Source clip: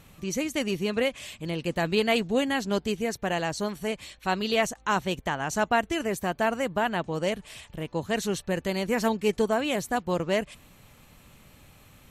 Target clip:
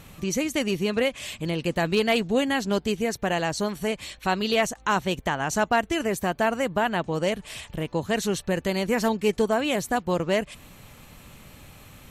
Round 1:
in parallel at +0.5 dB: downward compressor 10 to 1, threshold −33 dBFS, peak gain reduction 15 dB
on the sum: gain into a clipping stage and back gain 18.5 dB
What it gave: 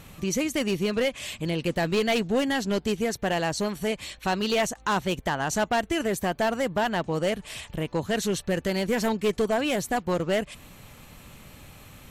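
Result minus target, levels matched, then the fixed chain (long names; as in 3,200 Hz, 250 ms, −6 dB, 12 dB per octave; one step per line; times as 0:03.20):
gain into a clipping stage and back: distortion +18 dB
in parallel at +0.5 dB: downward compressor 10 to 1, threshold −33 dBFS, peak gain reduction 15 dB
on the sum: gain into a clipping stage and back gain 12 dB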